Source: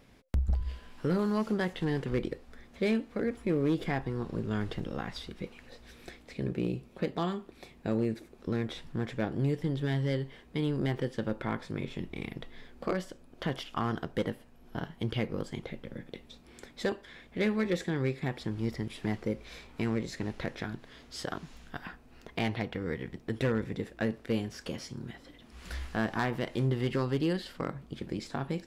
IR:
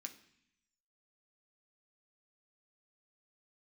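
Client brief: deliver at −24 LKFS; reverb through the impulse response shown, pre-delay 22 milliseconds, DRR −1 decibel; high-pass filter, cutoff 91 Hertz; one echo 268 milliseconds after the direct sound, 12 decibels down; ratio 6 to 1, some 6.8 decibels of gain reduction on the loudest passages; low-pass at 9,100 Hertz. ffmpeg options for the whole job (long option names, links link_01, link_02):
-filter_complex "[0:a]highpass=91,lowpass=9100,acompressor=threshold=-32dB:ratio=6,aecho=1:1:268:0.251,asplit=2[link_01][link_02];[1:a]atrim=start_sample=2205,adelay=22[link_03];[link_02][link_03]afir=irnorm=-1:irlink=0,volume=5.5dB[link_04];[link_01][link_04]amix=inputs=2:normalize=0,volume=12.5dB"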